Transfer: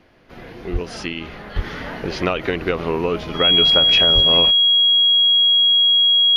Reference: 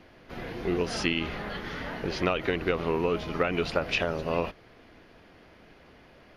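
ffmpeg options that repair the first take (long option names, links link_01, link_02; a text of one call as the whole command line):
ffmpeg -i in.wav -filter_complex "[0:a]bandreject=frequency=3300:width=30,asplit=3[link_01][link_02][link_03];[link_01]afade=type=out:start_time=0.72:duration=0.02[link_04];[link_02]highpass=frequency=140:width=0.5412,highpass=frequency=140:width=1.3066,afade=type=in:start_time=0.72:duration=0.02,afade=type=out:start_time=0.84:duration=0.02[link_05];[link_03]afade=type=in:start_time=0.84:duration=0.02[link_06];[link_04][link_05][link_06]amix=inputs=3:normalize=0,asplit=3[link_07][link_08][link_09];[link_07]afade=type=out:start_time=1.55:duration=0.02[link_10];[link_08]highpass=frequency=140:width=0.5412,highpass=frequency=140:width=1.3066,afade=type=in:start_time=1.55:duration=0.02,afade=type=out:start_time=1.67:duration=0.02[link_11];[link_09]afade=type=in:start_time=1.67:duration=0.02[link_12];[link_10][link_11][link_12]amix=inputs=3:normalize=0,asplit=3[link_13][link_14][link_15];[link_13]afade=type=out:start_time=4.14:duration=0.02[link_16];[link_14]highpass=frequency=140:width=0.5412,highpass=frequency=140:width=1.3066,afade=type=in:start_time=4.14:duration=0.02,afade=type=out:start_time=4.26:duration=0.02[link_17];[link_15]afade=type=in:start_time=4.26:duration=0.02[link_18];[link_16][link_17][link_18]amix=inputs=3:normalize=0,asetnsamples=nb_out_samples=441:pad=0,asendcmd='1.56 volume volume -6dB',volume=0dB" out.wav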